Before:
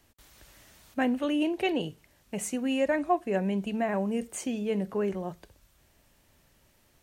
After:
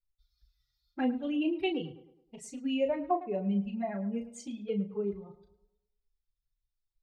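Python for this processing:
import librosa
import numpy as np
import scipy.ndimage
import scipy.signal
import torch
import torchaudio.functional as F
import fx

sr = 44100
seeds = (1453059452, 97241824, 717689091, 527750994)

y = fx.bin_expand(x, sr, power=2.0)
y = scipy.signal.sosfilt(scipy.signal.butter(2, 6000.0, 'lowpass', fs=sr, output='sos'), y)
y = fx.env_flanger(y, sr, rest_ms=5.9, full_db=-28.0)
y = fx.doubler(y, sr, ms=35.0, db=-7.5)
y = fx.echo_tape(y, sr, ms=107, feedback_pct=48, wet_db=-13.5, lp_hz=2200.0, drive_db=21.0, wow_cents=19)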